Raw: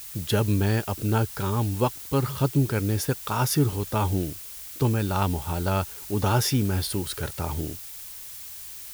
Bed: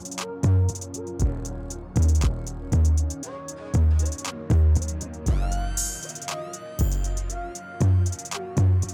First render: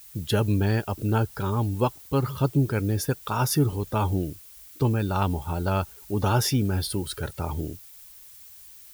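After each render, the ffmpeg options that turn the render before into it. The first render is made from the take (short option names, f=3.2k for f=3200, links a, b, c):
-af "afftdn=nr=10:nf=-40"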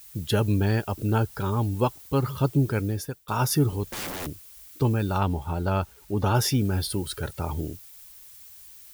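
-filter_complex "[0:a]asettb=1/sr,asplit=3[a][b][c];[a]atrim=end=3.834[d];[b]atrim=start=3.83:end=4.27,asetpts=PTS-STARTPTS,afade=t=in:d=0.004:c=qsin,afade=t=out:st=0.436:d=0.004:c=qsin,aeval=exprs='(mod(26.6*val(0)+1,2)-1)/26.6':c=same[e];[c]atrim=start=4.266[f];[d][e]acrossfade=d=0.004:c1=hsin:c2=qsin[g];[g][f]acrossfade=d=0.004:c1=qsin:c2=hsin,asettb=1/sr,asplit=3[h][i][j];[h]atrim=end=5.184[k];[i]atrim=start=5.18:end=6.35,asetpts=PTS-STARTPTS,afade=t=in:d=0.004:c=qsin,afade=t=out:st=1.166:d=0.004:c=qsin,highshelf=f=4.6k:g=-7[l];[j]atrim=start=6.346[m];[k][l]acrossfade=d=0.004:c1=hsin:c2=qsin[n];[n][m]acrossfade=d=0.004:c1=qsin:c2=hsin,asplit=2[o][p];[o]atrim=end=3.28,asetpts=PTS-STARTPTS,afade=t=out:st=2.76:d=0.52:silence=0.0668344[q];[p]atrim=start=3.28,asetpts=PTS-STARTPTS,afade=t=in:d=0.004:c=hsin:silence=0.0668344[r];[q][r]concat=n=2:v=0:a=1"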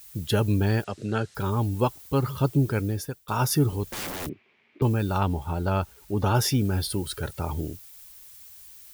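-filter_complex "[0:a]asettb=1/sr,asplit=3[a][b][c];[a]atrim=end=0.844[d];[b]atrim=start=0.84:end=1.35,asetpts=PTS-STARTPTS,afade=t=in:d=0.004:c=qsin,afade=t=out:st=0.506:d=0.004:c=qsin,highpass=150,equalizer=f=290:t=q:w=4:g=-7,equalizer=f=910:t=q:w=4:g=-10,equalizer=f=1.8k:t=q:w=4:g=6,equalizer=f=4k:t=q:w=4:g=4,lowpass=f=8k:w=0.5412,lowpass=f=8k:w=1.3066[e];[c]atrim=start=1.346[f];[d][e]acrossfade=d=0.004:c1=hsin:c2=qsin[g];[g][f]acrossfade=d=0.004:c1=qsin:c2=hsin,asettb=1/sr,asplit=3[h][i][j];[h]atrim=end=4.294[k];[i]atrim=start=4.29:end=4.82,asetpts=PTS-STARTPTS,afade=t=in:d=0.004:c=qsin,afade=t=out:st=0.526:d=0.004:c=qsin,highpass=f=140:w=0.5412,highpass=f=140:w=1.3066,equalizer=f=230:t=q:w=4:g=9,equalizer=f=380:t=q:w=4:g=10,equalizer=f=1.4k:t=q:w=4:g=-5,equalizer=f=2.3k:t=q:w=4:g=8,lowpass=f=2.6k:w=0.5412,lowpass=f=2.6k:w=1.3066[l];[j]atrim=start=4.816[m];[k][l]acrossfade=d=0.004:c1=hsin:c2=qsin[n];[n][m]acrossfade=d=0.004:c1=qsin:c2=hsin"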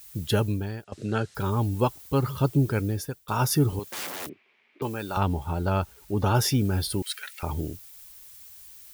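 -filter_complex "[0:a]asettb=1/sr,asplit=3[a][b][c];[a]atrim=end=3.794[d];[b]atrim=start=3.79:end=5.17,asetpts=PTS-STARTPTS,afade=t=in:d=0.004:c=qsin,afade=t=out:st=1.376:d=0.004:c=qsin,highpass=f=520:p=1[e];[c]atrim=start=5.166[f];[d][e]acrossfade=d=0.004:c1=hsin:c2=qsin[g];[g][f]acrossfade=d=0.004:c1=qsin:c2=hsin,asettb=1/sr,asplit=3[h][i][j];[h]atrim=end=7.024[k];[i]atrim=start=7.02:end=7.43,asetpts=PTS-STARTPTS,afade=t=in:d=0.004:c=qsin,afade=t=out:st=0.406:d=0.004:c=qsin,highpass=f=2.1k:t=q:w=2.9[l];[j]atrim=start=7.426[m];[k][l]acrossfade=d=0.004:c1=hsin:c2=qsin[n];[n][m]acrossfade=d=0.004:c1=qsin:c2=hsin,asplit=2[o][p];[o]atrim=end=0.92,asetpts=PTS-STARTPTS,afade=t=out:st=0.37:d=0.55:c=qua:silence=0.177828[q];[p]atrim=start=0.92,asetpts=PTS-STARTPTS,afade=t=in:d=0.004:c=hsin:silence=0.177828[r];[q][r]concat=n=2:v=0:a=1"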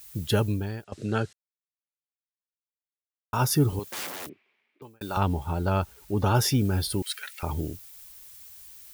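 -filter_complex "[0:a]asplit=4[a][b][c][d];[a]atrim=end=1.33,asetpts=PTS-STARTPTS,afade=t=out:st=1.326:d=0.004:c=hsin[e];[b]atrim=start=1.33:end=3.33,asetpts=PTS-STARTPTS,volume=0[f];[c]atrim=start=3.33:end=5.01,asetpts=PTS-STARTPTS,afade=t=in:d=0.004:c=hsin,afade=t=out:st=0.65:d=1.03[g];[d]atrim=start=5.01,asetpts=PTS-STARTPTS,afade=t=in:d=0.004:c=hsin[h];[e][f][g][h]concat=n=4:v=0:a=1"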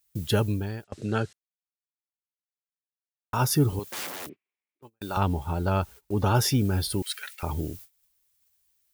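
-af "agate=range=-23dB:threshold=-43dB:ratio=16:detection=peak"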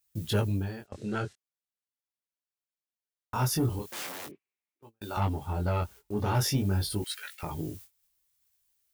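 -af "asoftclip=type=tanh:threshold=-16.5dB,flanger=delay=18:depth=5.9:speed=0.41"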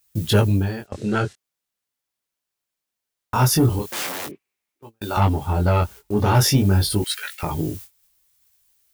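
-af "volume=10.5dB"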